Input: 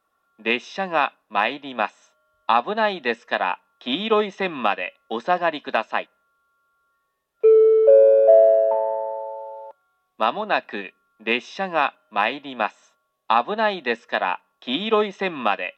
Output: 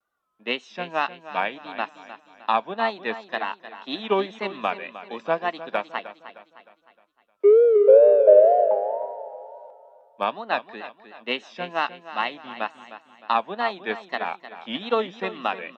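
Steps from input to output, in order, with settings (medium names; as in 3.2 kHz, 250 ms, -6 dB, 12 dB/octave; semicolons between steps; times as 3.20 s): wow and flutter 140 cents; on a send: feedback delay 308 ms, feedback 44%, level -10 dB; on the sum: upward expansion 1.5:1, over -27 dBFS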